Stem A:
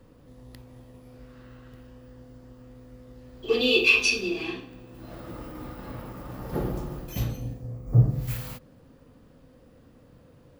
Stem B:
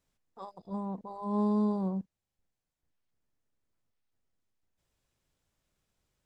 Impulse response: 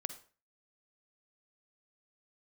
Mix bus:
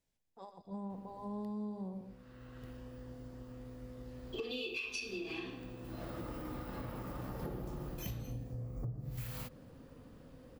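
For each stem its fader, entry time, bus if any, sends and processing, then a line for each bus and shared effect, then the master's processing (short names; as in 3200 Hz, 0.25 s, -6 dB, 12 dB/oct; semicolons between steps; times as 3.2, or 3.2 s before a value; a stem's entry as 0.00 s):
-1.0 dB, 0.90 s, no send, no echo send, compressor 2.5:1, threshold -31 dBFS, peak gain reduction 12.5 dB; auto duck -12 dB, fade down 1.95 s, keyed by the second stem
-5.0 dB, 0.00 s, no send, echo send -10.5 dB, bell 1200 Hz -8.5 dB 0.39 oct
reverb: off
echo: feedback echo 0.119 s, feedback 28%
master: compressor 4:1, threshold -39 dBFS, peak gain reduction 12 dB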